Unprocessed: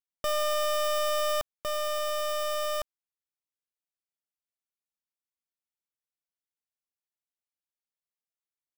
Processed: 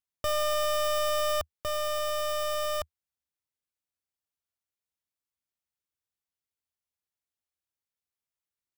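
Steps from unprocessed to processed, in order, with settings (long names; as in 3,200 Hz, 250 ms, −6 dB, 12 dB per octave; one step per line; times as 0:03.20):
parametric band 79 Hz +11.5 dB 0.89 octaves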